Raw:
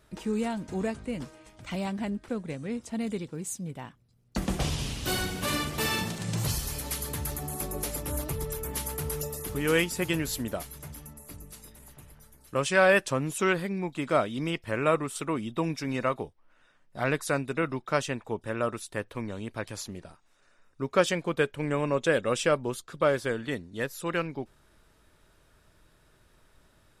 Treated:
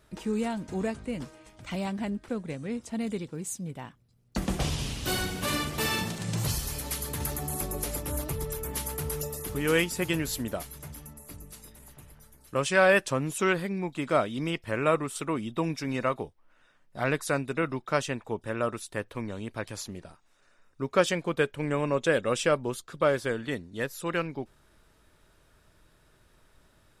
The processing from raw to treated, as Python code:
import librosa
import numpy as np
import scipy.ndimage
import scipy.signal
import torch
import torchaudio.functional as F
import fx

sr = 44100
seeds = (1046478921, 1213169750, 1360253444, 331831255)

y = fx.band_squash(x, sr, depth_pct=100, at=(7.2, 7.99))